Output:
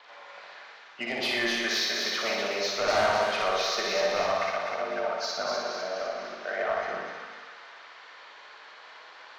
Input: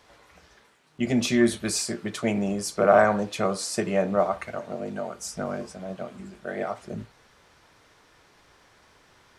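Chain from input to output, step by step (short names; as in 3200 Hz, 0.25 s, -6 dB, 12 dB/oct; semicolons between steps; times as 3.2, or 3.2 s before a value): nonlinear frequency compression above 2600 Hz 1.5:1; HPF 210 Hz 12 dB/oct; three-band isolator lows -21 dB, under 570 Hz, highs -22 dB, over 5600 Hz; in parallel at +2.5 dB: compressor 6:1, threshold -41 dBFS, peak gain reduction 22.5 dB; on the sum: soft clip -23 dBFS, distortion -8 dB; flutter echo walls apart 10.2 m, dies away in 1.1 s; vibrato 2.5 Hz 20 cents; split-band echo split 1100 Hz, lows 81 ms, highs 0.252 s, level -4 dB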